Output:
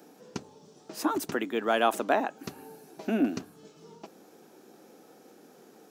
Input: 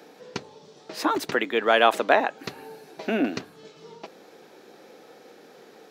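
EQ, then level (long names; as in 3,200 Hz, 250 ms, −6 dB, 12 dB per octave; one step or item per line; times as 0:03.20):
octave-band graphic EQ 125/500/1,000/2,000/4,000 Hz −6/−9/−5/−11/−11 dB
+3.0 dB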